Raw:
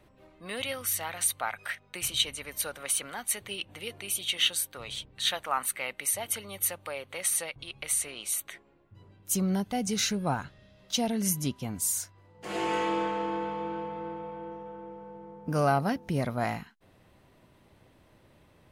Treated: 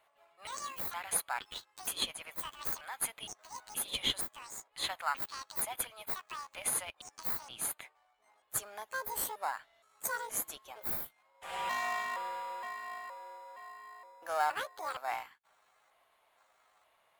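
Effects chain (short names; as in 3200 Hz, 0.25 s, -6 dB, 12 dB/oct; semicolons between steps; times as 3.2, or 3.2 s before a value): trilling pitch shifter +11.5 st, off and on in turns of 0.509 s; HPF 640 Hz 24 dB/oct; bell 4600 Hz -10 dB 0.57 oct; in parallel at -11 dB: sample-and-hold 16×; on the sum: speed mistake 44.1 kHz file played as 48 kHz; gain -4.5 dB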